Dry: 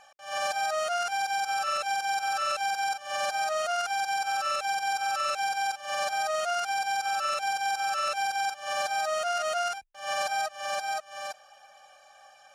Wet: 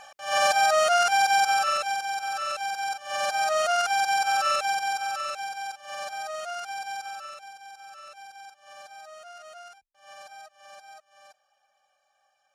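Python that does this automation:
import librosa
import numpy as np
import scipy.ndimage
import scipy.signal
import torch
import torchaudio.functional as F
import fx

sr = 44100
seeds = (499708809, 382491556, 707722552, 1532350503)

y = fx.gain(x, sr, db=fx.line((1.42, 8.0), (2.09, -1.5), (2.79, -1.5), (3.6, 5.0), (4.5, 5.0), (5.52, -5.5), (6.97, -5.5), (7.54, -16.5)))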